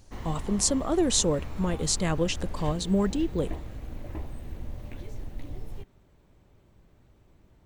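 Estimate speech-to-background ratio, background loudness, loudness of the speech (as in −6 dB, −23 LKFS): 13.5 dB, −40.5 LKFS, −27.0 LKFS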